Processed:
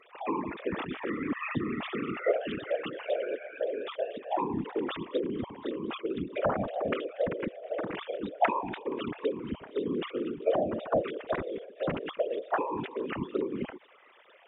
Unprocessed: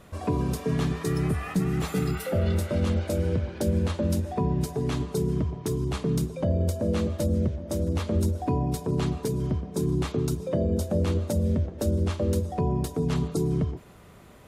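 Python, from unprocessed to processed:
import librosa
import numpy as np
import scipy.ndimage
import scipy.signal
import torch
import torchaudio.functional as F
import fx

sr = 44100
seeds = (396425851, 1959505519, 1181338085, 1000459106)

y = fx.sine_speech(x, sr)
y = fx.tilt_shelf(y, sr, db=-7.5, hz=1200.0)
y = fx.echo_wet_highpass(y, sr, ms=237, feedback_pct=68, hz=2100.0, wet_db=-18.5)
y = fx.whisperise(y, sr, seeds[0])
y = F.gain(torch.from_numpy(y), -1.5).numpy()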